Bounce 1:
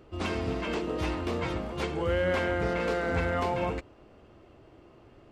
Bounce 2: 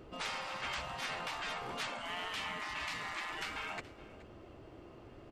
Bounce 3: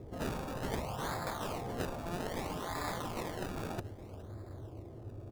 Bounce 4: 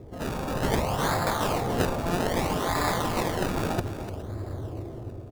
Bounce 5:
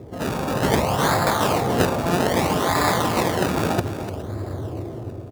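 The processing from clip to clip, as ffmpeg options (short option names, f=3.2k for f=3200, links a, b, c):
-af "afftfilt=real='re*lt(hypot(re,im),0.0501)':imag='im*lt(hypot(re,im),0.0501)':win_size=1024:overlap=0.75,aecho=1:1:424:0.112,volume=1dB"
-filter_complex "[0:a]equalizer=f=100:w=2.3:g=14,acrossover=split=990[a][b];[b]acrusher=samples=29:mix=1:aa=0.000001:lfo=1:lforange=29:lforate=0.62[c];[a][c]amix=inputs=2:normalize=0,volume=3dB"
-filter_complex "[0:a]dynaudnorm=f=120:g=7:m=8dB,asplit=2[a][b];[b]aecho=0:1:297:0.282[c];[a][c]amix=inputs=2:normalize=0,volume=3.5dB"
-af "highpass=84,volume=6.5dB"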